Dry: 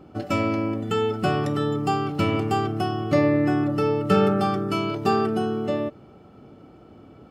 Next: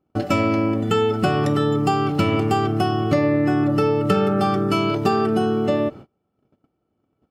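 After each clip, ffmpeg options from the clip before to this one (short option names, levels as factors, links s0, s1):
-af "agate=range=0.0251:threshold=0.00794:ratio=16:detection=peak,acompressor=threshold=0.0794:ratio=6,volume=2.24"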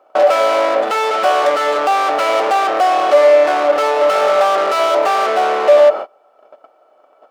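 -filter_complex "[0:a]equalizer=f=1200:w=1.4:g=5.5,asplit=2[s0][s1];[s1]highpass=f=720:p=1,volume=70.8,asoftclip=type=tanh:threshold=0.794[s2];[s0][s2]amix=inputs=2:normalize=0,lowpass=f=3400:p=1,volume=0.501,highpass=f=600:t=q:w=4.9,volume=0.316"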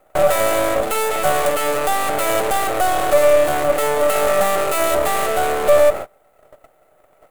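-filter_complex "[0:a]acrossover=split=540[s0][s1];[s1]aeval=exprs='max(val(0),0)':c=same[s2];[s0][s2]amix=inputs=2:normalize=0,aexciter=amount=7.2:drive=5.1:freq=7400,volume=0.891"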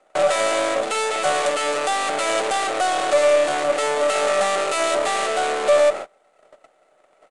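-filter_complex "[0:a]crystalizer=i=3:c=0,acrossover=split=190 6300:gain=0.178 1 0.112[s0][s1][s2];[s0][s1][s2]amix=inputs=3:normalize=0,aresample=22050,aresample=44100,volume=0.668"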